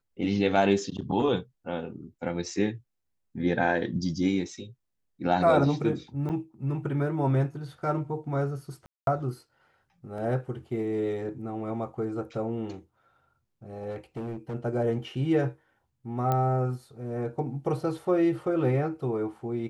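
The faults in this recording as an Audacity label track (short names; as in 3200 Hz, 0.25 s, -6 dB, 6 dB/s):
6.290000	6.300000	gap 7.5 ms
8.860000	9.070000	gap 0.212 s
10.180000	10.180000	gap 2 ms
13.900000	14.550000	clipped -31 dBFS
16.320000	16.320000	pop -15 dBFS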